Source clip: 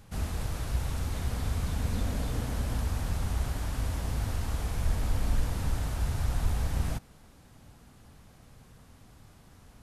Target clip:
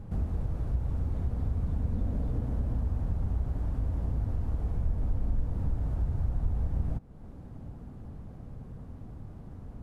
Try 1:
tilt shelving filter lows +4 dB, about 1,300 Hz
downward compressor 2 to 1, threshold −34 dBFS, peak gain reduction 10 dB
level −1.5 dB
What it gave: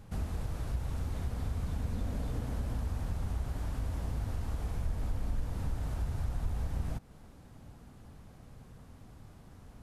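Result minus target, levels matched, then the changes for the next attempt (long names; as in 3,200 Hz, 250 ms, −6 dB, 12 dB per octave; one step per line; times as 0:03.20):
1,000 Hz band +6.0 dB
change: tilt shelving filter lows +13.5 dB, about 1,300 Hz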